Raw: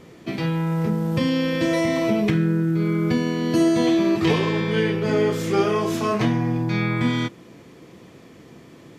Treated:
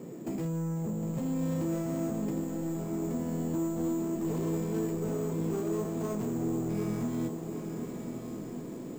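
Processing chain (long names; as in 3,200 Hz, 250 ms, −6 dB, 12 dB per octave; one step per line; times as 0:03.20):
stylus tracing distortion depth 0.24 ms
Bessel high-pass filter 260 Hz, order 4
spectral tilt −4.5 dB per octave
downward compressor 6 to 1, threshold −27 dBFS, peak gain reduction 16 dB
soft clipping −28.5 dBFS, distortion −13 dB
parametric band 1,700 Hz −6 dB 2.3 octaves
on a send: feedback delay with all-pass diffusion 1,056 ms, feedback 41%, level −8 dB
on the sum: bad sample-rate conversion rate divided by 6×, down none, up hold
feedback echo at a low word length 758 ms, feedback 55%, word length 9 bits, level −9.5 dB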